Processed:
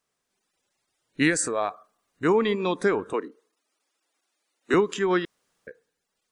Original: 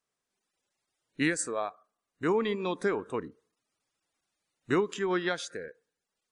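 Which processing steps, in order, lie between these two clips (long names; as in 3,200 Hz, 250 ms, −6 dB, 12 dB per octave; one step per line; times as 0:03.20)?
0:01.30–0:02.25: transient designer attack −2 dB, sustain +5 dB
0:03.13–0:04.74: high-pass filter 270 Hz 24 dB per octave
0:05.25–0:05.67: fill with room tone
level +6 dB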